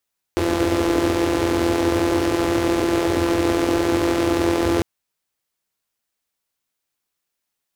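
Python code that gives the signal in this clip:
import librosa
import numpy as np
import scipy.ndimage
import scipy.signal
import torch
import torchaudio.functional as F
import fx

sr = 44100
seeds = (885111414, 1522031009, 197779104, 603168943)

y = fx.engine_four(sr, seeds[0], length_s=4.45, rpm=5100, resonances_hz=(87.0, 320.0))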